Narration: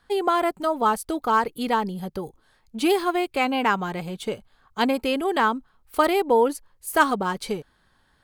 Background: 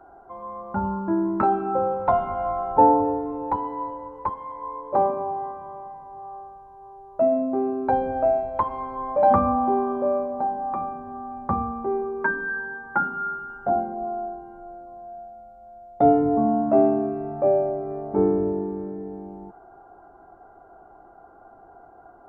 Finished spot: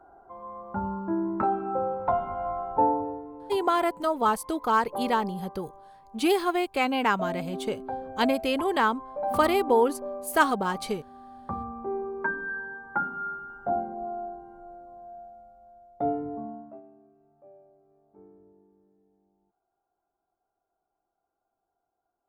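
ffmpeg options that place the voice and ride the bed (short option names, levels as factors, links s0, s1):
-filter_complex "[0:a]adelay=3400,volume=0.75[s0];[1:a]volume=1.33,afade=t=out:st=2.55:d=0.73:silence=0.421697,afade=t=in:st=11.25:d=0.83:silence=0.421697,afade=t=out:st=15.28:d=1.53:silence=0.0375837[s1];[s0][s1]amix=inputs=2:normalize=0"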